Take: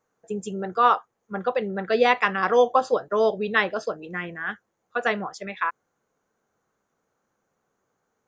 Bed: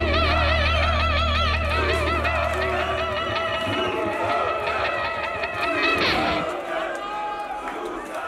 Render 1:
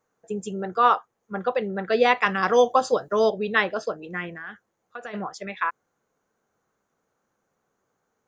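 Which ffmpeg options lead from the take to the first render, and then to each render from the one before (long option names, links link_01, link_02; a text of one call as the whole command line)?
ffmpeg -i in.wav -filter_complex "[0:a]asettb=1/sr,asplit=3[link_01][link_02][link_03];[link_01]atrim=end=2.264[link_04];[link_02]atrim=start=2.26:end=3.3,asetpts=PTS-STARTPTS,afade=type=in:duration=0.004:curve=qsin,afade=type=out:start_time=1.036:duration=0.004:curve=qsin,bass=frequency=250:gain=4,treble=frequency=4000:gain=9[link_05];[link_03]atrim=start=3.296[link_06];[link_04][link_05]acrossfade=duration=0.004:curve1=hsin:curve2=qsin[link_07];[link_07][link_06]acrossfade=duration=0.004:curve1=qsin:curve2=hsin,asplit=3[link_08][link_09][link_10];[link_08]afade=type=out:start_time=4.29:duration=0.02[link_11];[link_09]acompressor=threshold=-33dB:ratio=6:attack=3.2:release=140:knee=1:detection=peak,afade=type=in:start_time=4.29:duration=0.02,afade=type=out:start_time=5.13:duration=0.02[link_12];[link_10]afade=type=in:start_time=5.13:duration=0.02[link_13];[link_11][link_12][link_13]amix=inputs=3:normalize=0" out.wav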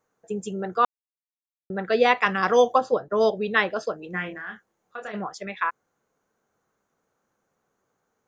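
ffmpeg -i in.wav -filter_complex "[0:a]asplit=3[link_01][link_02][link_03];[link_01]afade=type=out:start_time=2.77:duration=0.02[link_04];[link_02]lowpass=frequency=1300:poles=1,afade=type=in:start_time=2.77:duration=0.02,afade=type=out:start_time=3.2:duration=0.02[link_05];[link_03]afade=type=in:start_time=3.2:duration=0.02[link_06];[link_04][link_05][link_06]amix=inputs=3:normalize=0,asettb=1/sr,asplit=3[link_07][link_08][link_09];[link_07]atrim=end=4.114[link_10];[link_08]atrim=start=4.11:end=5.12,asetpts=PTS-STARTPTS,afade=type=in:duration=0.004:curve=qsin,afade=type=out:start_time=1.006:duration=0.004:curve=qsin,asplit=2[link_11][link_12];[link_12]adelay=27,volume=-4dB[link_13];[link_11][link_13]amix=inputs=2:normalize=0,atrim=end_sample=44541[link_14];[link_09]atrim=start=5.116[link_15];[link_10][link_14]acrossfade=duration=0.004:curve1=hsin:curve2=qsin[link_16];[link_16][link_15]acrossfade=duration=0.004:curve1=qsin:curve2=hsin,asplit=3[link_17][link_18][link_19];[link_17]atrim=end=0.85,asetpts=PTS-STARTPTS,afade=type=out:start_time=0.846:duration=0.004:curve=hsin[link_20];[link_18]atrim=start=0.85:end=1.7,asetpts=PTS-STARTPTS,volume=0[link_21];[link_19]atrim=start=1.7,asetpts=PTS-STARTPTS,afade=type=in:duration=0.004:curve=hsin[link_22];[link_20][link_21][link_22]concat=n=3:v=0:a=1" out.wav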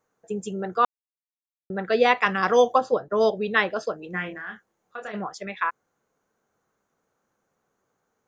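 ffmpeg -i in.wav -af anull out.wav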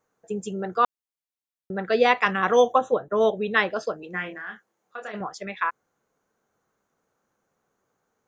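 ffmpeg -i in.wav -filter_complex "[0:a]asettb=1/sr,asplit=3[link_01][link_02][link_03];[link_01]atrim=end=2.314[link_04];[link_02]atrim=start=2.31:end=3.53,asetpts=PTS-STARTPTS,afade=type=in:duration=0.004:curve=qsin,afade=type=out:start_time=1.216:duration=0.004:curve=qsin,asuperstop=centerf=4800:order=12:qfactor=2.8[link_05];[link_03]atrim=start=3.526[link_06];[link_04][link_05]acrossfade=duration=0.004:curve1=hsin:curve2=qsin[link_07];[link_07][link_06]acrossfade=duration=0.004:curve1=qsin:curve2=hsin,asettb=1/sr,asplit=3[link_08][link_09][link_10];[link_08]atrim=end=4.034[link_11];[link_09]atrim=start=4.03:end=5.21,asetpts=PTS-STARTPTS,afade=type=in:duration=0.004:curve=qsin,afade=type=out:start_time=1.176:duration=0.004:curve=qsin,highpass=frequency=220:poles=1[link_12];[link_10]atrim=start=5.206[link_13];[link_11][link_12]acrossfade=duration=0.004:curve1=hsin:curve2=qsin[link_14];[link_14][link_13]acrossfade=duration=0.004:curve1=qsin:curve2=hsin" out.wav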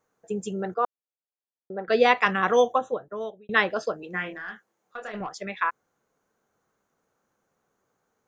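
ffmpeg -i in.wav -filter_complex "[0:a]asettb=1/sr,asplit=3[link_01][link_02][link_03];[link_01]atrim=end=0.744[link_04];[link_02]atrim=start=0.74:end=1.88,asetpts=PTS-STARTPTS,afade=type=in:duration=0.004:curve=qsin,afade=type=out:start_time=1.136:duration=0.004:curve=qsin,bandpass=frequency=550:width_type=q:width=1.1[link_05];[link_03]atrim=start=1.876[link_06];[link_04][link_05]acrossfade=duration=0.004:curve1=hsin:curve2=qsin[link_07];[link_07][link_06]acrossfade=duration=0.004:curve1=qsin:curve2=hsin,asettb=1/sr,asplit=3[link_08][link_09][link_10];[link_08]atrim=end=4.324[link_11];[link_09]atrim=start=4.32:end=5.34,asetpts=PTS-STARTPTS,afade=type=in:duration=0.004:curve=qsin,afade=type=out:start_time=1.016:duration=0.004:curve=qsin,aeval=exprs='(tanh(15.8*val(0)+0.15)-tanh(0.15))/15.8':channel_layout=same[link_12];[link_10]atrim=start=5.336[link_13];[link_11][link_12]acrossfade=duration=0.004:curve1=hsin:curve2=qsin[link_14];[link_14][link_13]acrossfade=duration=0.004:curve1=qsin:curve2=hsin,asplit=2[link_15][link_16];[link_15]atrim=end=3.49,asetpts=PTS-STARTPTS,afade=type=out:start_time=2.38:duration=1.11[link_17];[link_16]atrim=start=3.49,asetpts=PTS-STARTPTS,afade=type=in:duration=0.004:curve=hsin[link_18];[link_17][link_18]concat=n=2:v=0:a=1" out.wav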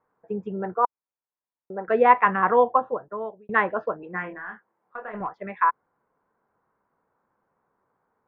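ffmpeg -i in.wav -af "lowpass=frequency=2000:width=0.5412,lowpass=frequency=2000:width=1.3066,equalizer=frequency=970:width_type=o:width=0.35:gain=9" out.wav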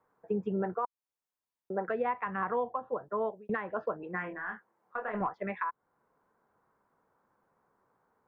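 ffmpeg -i in.wav -filter_complex "[0:a]acrossover=split=150[link_01][link_02];[link_02]acompressor=threshold=-24dB:ratio=6[link_03];[link_01][link_03]amix=inputs=2:normalize=0,alimiter=limit=-21.5dB:level=0:latency=1:release=430" out.wav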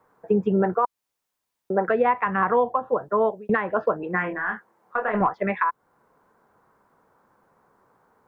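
ffmpeg -i in.wav -af "volume=11dB" out.wav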